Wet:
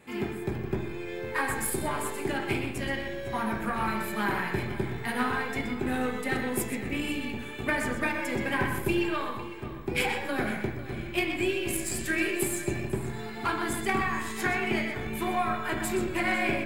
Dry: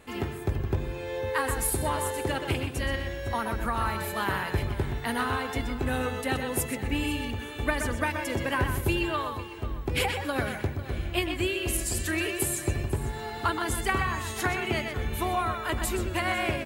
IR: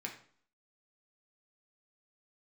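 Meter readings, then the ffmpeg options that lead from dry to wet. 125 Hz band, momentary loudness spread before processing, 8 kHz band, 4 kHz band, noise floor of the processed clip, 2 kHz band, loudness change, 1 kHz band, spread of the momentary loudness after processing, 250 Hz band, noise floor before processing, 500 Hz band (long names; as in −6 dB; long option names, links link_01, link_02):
−5.0 dB, 5 LU, −3.0 dB, −3.0 dB, −38 dBFS, +1.0 dB, −1.0 dB, −1.0 dB, 6 LU, +2.0 dB, −38 dBFS, −0.5 dB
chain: -filter_complex "[0:a]aeval=exprs='0.266*(cos(1*acos(clip(val(0)/0.266,-1,1)))-cos(1*PI/2))+0.0237*(cos(3*acos(clip(val(0)/0.266,-1,1)))-cos(3*PI/2))+0.015*(cos(4*acos(clip(val(0)/0.266,-1,1)))-cos(4*PI/2))+0.00266*(cos(8*acos(clip(val(0)/0.266,-1,1)))-cos(8*PI/2))':channel_layout=same[link_01];[1:a]atrim=start_sample=2205[link_02];[link_01][link_02]afir=irnorm=-1:irlink=0,volume=2.5dB"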